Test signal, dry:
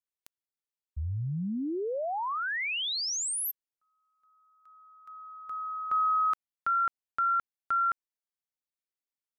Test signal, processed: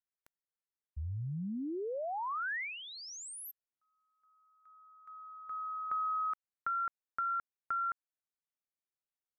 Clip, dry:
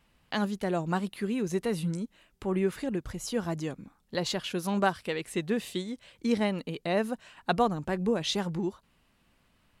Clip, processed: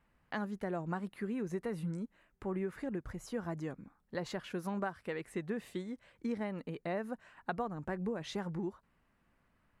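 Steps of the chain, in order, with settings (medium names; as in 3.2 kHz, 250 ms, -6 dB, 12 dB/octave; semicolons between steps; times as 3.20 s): resonant high shelf 2.4 kHz -8 dB, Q 1.5; compression 6:1, threshold -27 dBFS; trim -5.5 dB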